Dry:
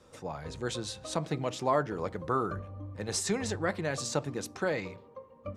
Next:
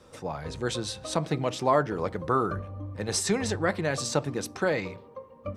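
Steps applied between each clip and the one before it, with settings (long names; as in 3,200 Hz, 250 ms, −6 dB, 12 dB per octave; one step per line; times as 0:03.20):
notch filter 6,900 Hz, Q 13
level +4.5 dB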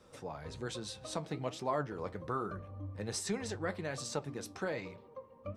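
in parallel at −0.5 dB: downward compressor, threshold −37 dBFS, peak gain reduction 18 dB
on the sum: flanger 1.2 Hz, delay 4.3 ms, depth 7.2 ms, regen +68%
level −8 dB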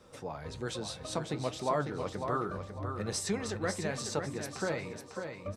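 repeating echo 549 ms, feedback 30%, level −7 dB
level +3 dB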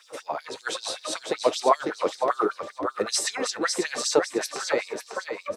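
auto-filter high-pass sine 5.2 Hz 330–5,100 Hz
level +9 dB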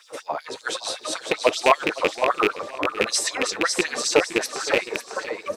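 loose part that buzzes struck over −35 dBFS, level −10 dBFS
feedback echo with a swinging delay time 514 ms, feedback 37%, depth 129 cents, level −16.5 dB
level +2.5 dB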